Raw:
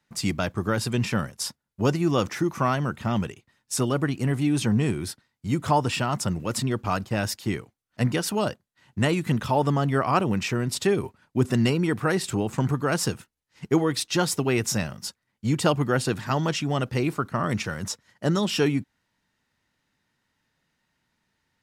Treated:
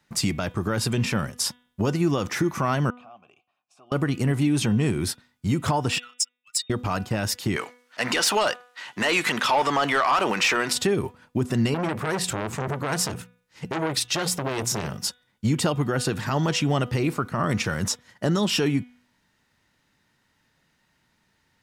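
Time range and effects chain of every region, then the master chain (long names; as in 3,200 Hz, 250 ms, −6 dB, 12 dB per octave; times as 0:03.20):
0:02.90–0:03.92: parametric band 480 Hz −7 dB 0.36 octaves + downward compressor 10 to 1, threshold −37 dBFS + formant filter a
0:05.98–0:06.70: expanding power law on the bin magnitudes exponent 2.1 + elliptic high-pass filter 2,000 Hz, stop band 80 dB + leveller curve on the samples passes 1
0:07.56–0:10.73: meter weighting curve A + transient designer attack −1 dB, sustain +4 dB + mid-hump overdrive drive 18 dB, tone 7,600 Hz, clips at −8 dBFS
0:11.74–0:14.99: mains-hum notches 60/120/180/240 Hz + saturating transformer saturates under 2,100 Hz
whole clip: downward compressor 3 to 1, threshold −26 dBFS; brickwall limiter −20 dBFS; hum removal 245.8 Hz, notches 15; level +6.5 dB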